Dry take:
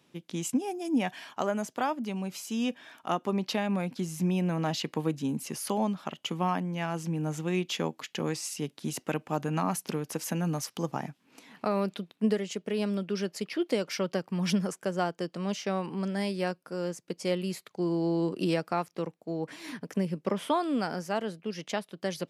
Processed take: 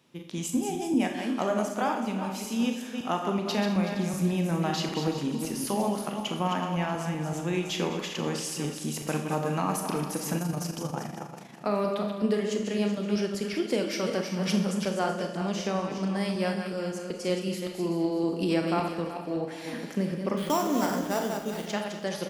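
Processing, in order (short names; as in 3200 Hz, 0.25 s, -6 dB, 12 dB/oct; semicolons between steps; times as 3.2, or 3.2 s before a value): regenerating reverse delay 0.188 s, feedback 49%, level -6 dB; 20.37–21.66 sample-rate reducer 6500 Hz, jitter 0%; feedback echo 0.206 s, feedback 44%, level -15 dB; Schroeder reverb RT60 0.57 s, combs from 27 ms, DRR 5 dB; 10.38–11.65 AM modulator 25 Hz, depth 40%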